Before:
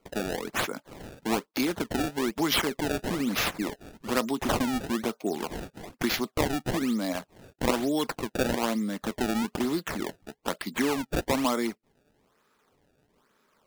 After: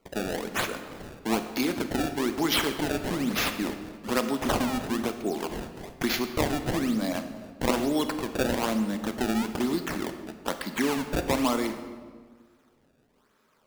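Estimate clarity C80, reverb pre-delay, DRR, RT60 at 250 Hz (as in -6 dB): 10.5 dB, 28 ms, 8.0 dB, 1.9 s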